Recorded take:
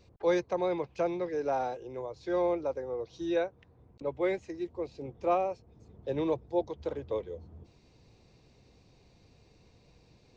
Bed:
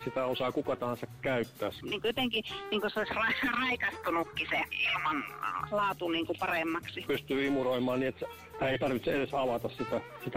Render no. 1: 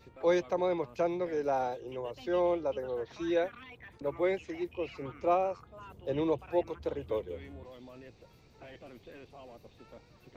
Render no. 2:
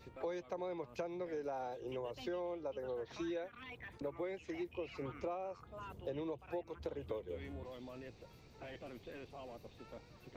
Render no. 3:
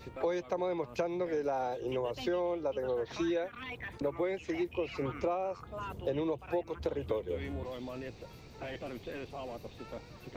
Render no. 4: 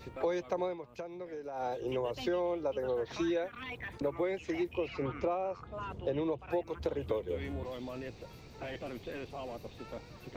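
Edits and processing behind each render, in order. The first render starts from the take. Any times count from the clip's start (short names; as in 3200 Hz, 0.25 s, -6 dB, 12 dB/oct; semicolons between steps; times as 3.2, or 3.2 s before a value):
add bed -20 dB
compressor 12:1, threshold -38 dBFS, peak gain reduction 16.5 dB
gain +8.5 dB
0.64–1.66 dip -9.5 dB, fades 0.13 s; 4.88–6.5 air absorption 79 m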